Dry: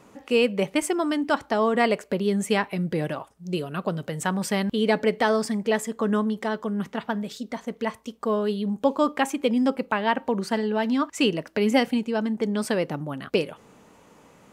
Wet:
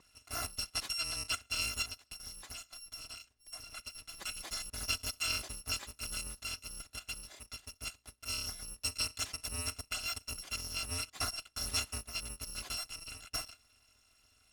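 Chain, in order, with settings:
samples in bit-reversed order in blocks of 256 samples
0:01.82–0:03.95: downward compressor 5 to 1, threshold −28 dBFS, peak gain reduction 10 dB
high-frequency loss of the air 65 metres
level −7 dB

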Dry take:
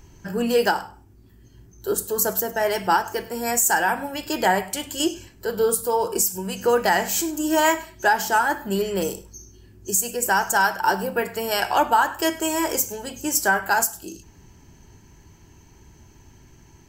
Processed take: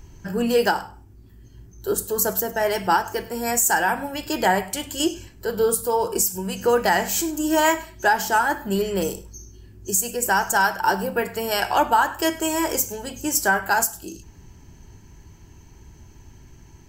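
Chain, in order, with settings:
low-shelf EQ 110 Hz +6.5 dB

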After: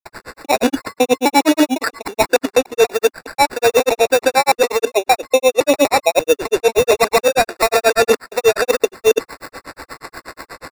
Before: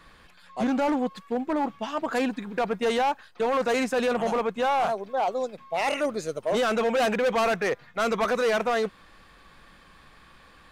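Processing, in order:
slices reordered back to front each 145 ms, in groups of 3
elliptic high-pass filter 270 Hz
parametric band 460 Hz +4 dB 0.3 octaves
reversed playback
downward compressor 6 to 1, threshold −32 dBFS, peak gain reduction 13.5 dB
reversed playback
decimation without filtering 14×
granular cloud, grains 8.3 per second, pitch spread up and down by 0 semitones
notch filter 1,200 Hz, Q 14
boost into a limiter +27.5 dB
level −2 dB

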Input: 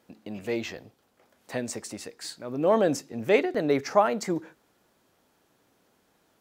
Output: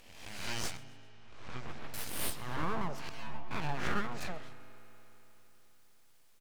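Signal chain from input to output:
peak hold with a rise ahead of every peak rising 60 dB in 0.88 s
treble cut that deepens with the level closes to 620 Hz, closed at −16 dBFS
tilt shelving filter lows −9 dB, about 1,400 Hz
full-wave rectification
0:00.77–0:01.94: head-to-tape spacing loss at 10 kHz 31 dB
0:03.09–0:03.51: stiff-string resonator 72 Hz, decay 0.56 s, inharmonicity 0.002
echo with shifted repeats 131 ms, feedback 42%, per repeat +140 Hz, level −22 dB
on a send at −13.5 dB: convolution reverb RT60 4.0 s, pre-delay 3 ms
on the sum: level −4 dB

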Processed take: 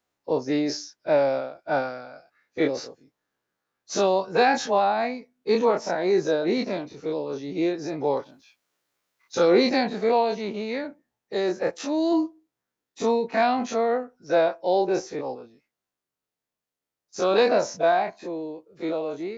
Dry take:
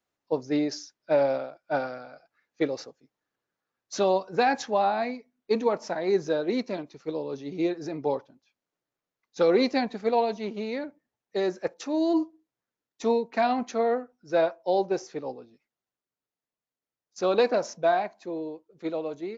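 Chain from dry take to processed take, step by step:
every bin's largest magnitude spread in time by 60 ms
0:08.17–0:09.98: one half of a high-frequency compander encoder only

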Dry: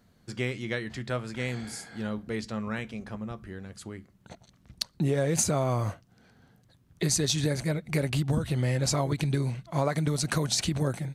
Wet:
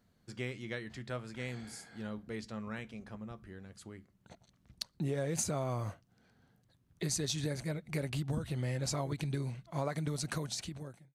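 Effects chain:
fade-out on the ending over 0.88 s
level −8.5 dB

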